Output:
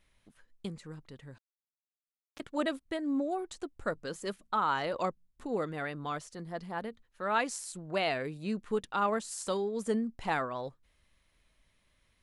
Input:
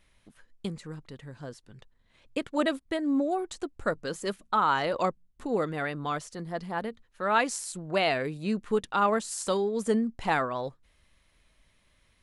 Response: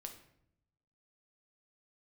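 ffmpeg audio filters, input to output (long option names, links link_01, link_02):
-filter_complex "[0:a]asettb=1/sr,asplit=3[link_01][link_02][link_03];[link_01]atrim=end=1.384[link_04];[link_02]atrim=start=1.38:end=2.4,asetpts=PTS-STARTPTS,afade=type=in:duration=0.004:curve=qsin,afade=type=out:start_time=1.016:duration=0.004:curve=qsin,acrusher=bits=2:mix=0:aa=0.5[link_05];[link_03]atrim=start=2.396[link_06];[link_04][link_05]acrossfade=duration=0.004:curve1=hsin:curve2=qsin[link_07];[link_07][link_06]acrossfade=duration=0.004:curve1=qsin:curve2=hsin,volume=-5dB"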